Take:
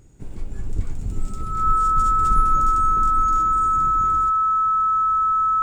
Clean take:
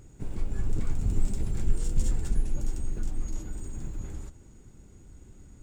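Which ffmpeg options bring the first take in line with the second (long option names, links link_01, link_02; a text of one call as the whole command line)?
ffmpeg -i in.wav -filter_complex "[0:a]bandreject=frequency=1300:width=30,asplit=3[link_01][link_02][link_03];[link_01]afade=type=out:start_time=0.75:duration=0.02[link_04];[link_02]highpass=frequency=140:width=0.5412,highpass=frequency=140:width=1.3066,afade=type=in:start_time=0.75:duration=0.02,afade=type=out:start_time=0.87:duration=0.02[link_05];[link_03]afade=type=in:start_time=0.87:duration=0.02[link_06];[link_04][link_05][link_06]amix=inputs=3:normalize=0,asetnsamples=nb_out_samples=441:pad=0,asendcmd='2.19 volume volume -4.5dB',volume=0dB" out.wav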